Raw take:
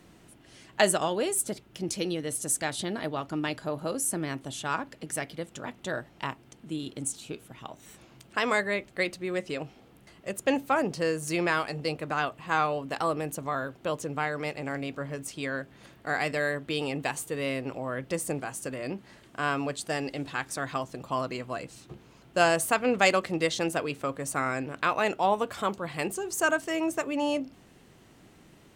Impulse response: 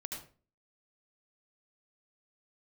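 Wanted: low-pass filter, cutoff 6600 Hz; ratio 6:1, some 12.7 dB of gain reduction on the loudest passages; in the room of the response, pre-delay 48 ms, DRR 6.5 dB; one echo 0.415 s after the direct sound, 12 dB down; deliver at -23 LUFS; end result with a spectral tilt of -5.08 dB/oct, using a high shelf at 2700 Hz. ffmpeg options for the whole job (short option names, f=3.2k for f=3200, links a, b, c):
-filter_complex "[0:a]lowpass=6.6k,highshelf=f=2.7k:g=-6,acompressor=threshold=-32dB:ratio=6,aecho=1:1:415:0.251,asplit=2[a][b];[1:a]atrim=start_sample=2205,adelay=48[c];[b][c]afir=irnorm=-1:irlink=0,volume=-5.5dB[d];[a][d]amix=inputs=2:normalize=0,volume=13.5dB"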